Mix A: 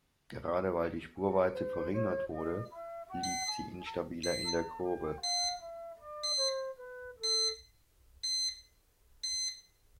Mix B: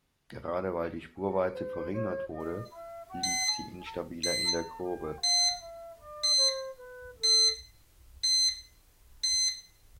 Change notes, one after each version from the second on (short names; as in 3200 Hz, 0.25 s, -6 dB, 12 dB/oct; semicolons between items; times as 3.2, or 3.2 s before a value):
second sound +8.0 dB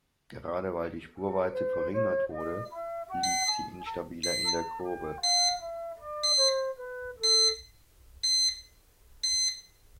first sound +7.5 dB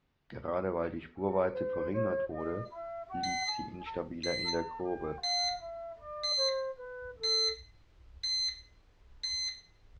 first sound -4.0 dB; master: add air absorption 190 m